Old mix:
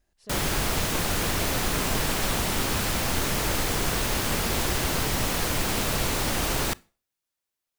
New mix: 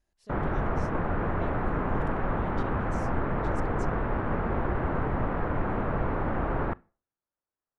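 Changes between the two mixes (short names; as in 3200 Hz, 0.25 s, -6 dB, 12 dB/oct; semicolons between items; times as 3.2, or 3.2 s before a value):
speech -5.5 dB; background: add LPF 1500 Hz 24 dB/oct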